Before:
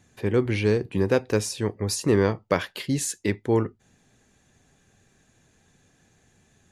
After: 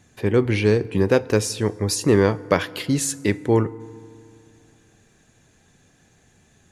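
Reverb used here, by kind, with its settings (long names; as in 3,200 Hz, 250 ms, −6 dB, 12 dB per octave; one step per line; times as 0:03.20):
feedback delay network reverb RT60 2.3 s, low-frequency decay 1.2×, high-frequency decay 0.5×, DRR 19 dB
level +4 dB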